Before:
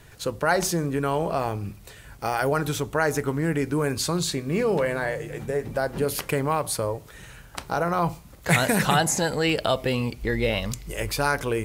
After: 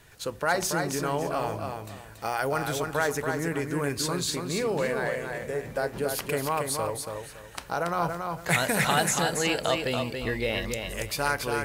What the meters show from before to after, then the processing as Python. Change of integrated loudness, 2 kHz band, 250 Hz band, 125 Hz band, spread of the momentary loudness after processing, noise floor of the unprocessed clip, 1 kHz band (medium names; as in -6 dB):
-3.0 dB, -1.5 dB, -5.0 dB, -6.0 dB, 9 LU, -47 dBFS, -2.0 dB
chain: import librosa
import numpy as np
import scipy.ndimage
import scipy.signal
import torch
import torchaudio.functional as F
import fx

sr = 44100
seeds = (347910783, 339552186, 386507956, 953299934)

p1 = fx.low_shelf(x, sr, hz=390.0, db=-5.5)
p2 = p1 + fx.echo_feedback(p1, sr, ms=281, feedback_pct=26, wet_db=-5.0, dry=0)
y = F.gain(torch.from_numpy(p2), -2.5).numpy()